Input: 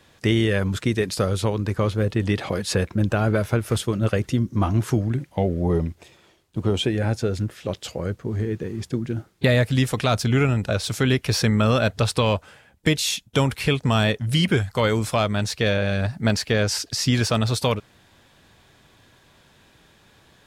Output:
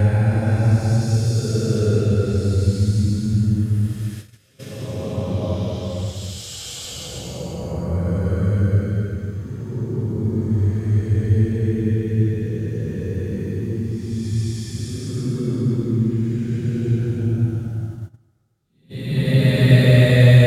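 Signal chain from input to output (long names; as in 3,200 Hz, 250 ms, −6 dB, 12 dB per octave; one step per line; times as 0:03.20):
extreme stretch with random phases 8.1×, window 0.25 s, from 0:07.02
noise gate −38 dBFS, range −18 dB
bass and treble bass +10 dB, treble +6 dB
level −1 dB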